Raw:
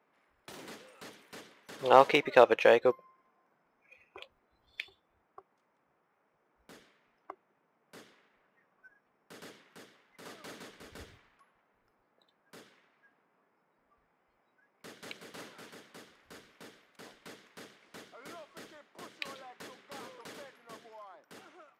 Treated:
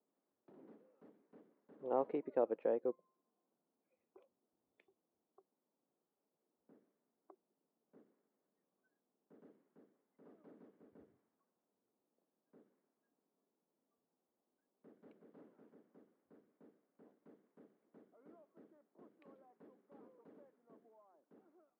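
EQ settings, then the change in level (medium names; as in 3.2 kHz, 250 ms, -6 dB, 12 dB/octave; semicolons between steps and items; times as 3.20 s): ladder band-pass 310 Hz, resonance 25%; +1.0 dB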